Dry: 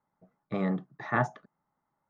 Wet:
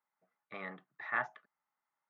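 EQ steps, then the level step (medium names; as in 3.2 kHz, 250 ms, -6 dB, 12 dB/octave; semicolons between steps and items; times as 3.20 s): band-pass filter 2.3 kHz, Q 1.3; distance through air 120 m; +1.0 dB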